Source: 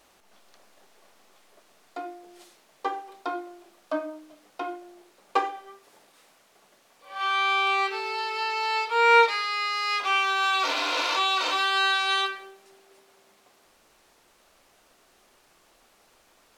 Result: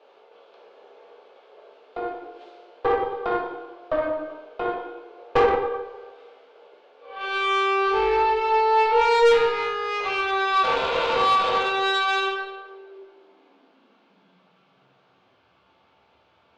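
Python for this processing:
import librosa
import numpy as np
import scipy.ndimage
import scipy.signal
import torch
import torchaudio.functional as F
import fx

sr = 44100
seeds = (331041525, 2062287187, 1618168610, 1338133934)

p1 = fx.rider(x, sr, range_db=5, speed_s=2.0)
p2 = x + (p1 * librosa.db_to_amplitude(1.0))
p3 = scipy.signal.sosfilt(scipy.signal.butter(4, 3600.0, 'lowpass', fs=sr, output='sos'), p2)
p4 = fx.notch(p3, sr, hz=1900.0, q=7.9)
p5 = fx.rev_plate(p4, sr, seeds[0], rt60_s=1.2, hf_ratio=0.75, predelay_ms=0, drr_db=-2.5)
p6 = fx.filter_sweep_highpass(p5, sr, from_hz=450.0, to_hz=89.0, start_s=12.69, end_s=15.61, q=6.4)
p7 = fx.tube_stage(p6, sr, drive_db=6.0, bias=0.6)
y = fx.comb_fb(p7, sr, f0_hz=68.0, decay_s=0.5, harmonics='all', damping=0.0, mix_pct=70)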